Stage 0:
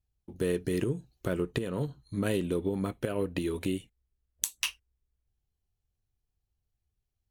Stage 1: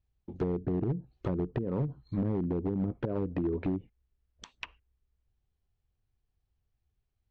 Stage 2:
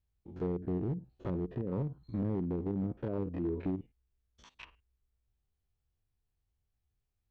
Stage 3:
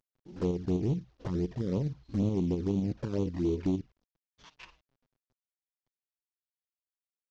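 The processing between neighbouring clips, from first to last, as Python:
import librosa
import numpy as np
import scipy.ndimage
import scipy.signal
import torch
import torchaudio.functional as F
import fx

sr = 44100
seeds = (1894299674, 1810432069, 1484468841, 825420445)

y1 = fx.env_lowpass_down(x, sr, base_hz=310.0, full_db=-26.5)
y1 = np.clip(10.0 ** (27.5 / 20.0) * y1, -1.0, 1.0) / 10.0 ** (27.5 / 20.0)
y1 = scipy.ndimage.gaussian_filter1d(y1, 1.8, mode='constant')
y1 = F.gain(torch.from_numpy(y1), 3.0).numpy()
y2 = fx.spec_steps(y1, sr, hold_ms=50)
y2 = F.gain(torch.from_numpy(y2), -2.5).numpy()
y3 = fx.cvsd(y2, sr, bps=32000)
y3 = fx.volume_shaper(y3, sr, bpm=118, per_beat=2, depth_db=-4, release_ms=75.0, shape='slow start')
y3 = fx.env_flanger(y3, sr, rest_ms=7.9, full_db=-30.5)
y3 = F.gain(torch.from_numpy(y3), 6.0).numpy()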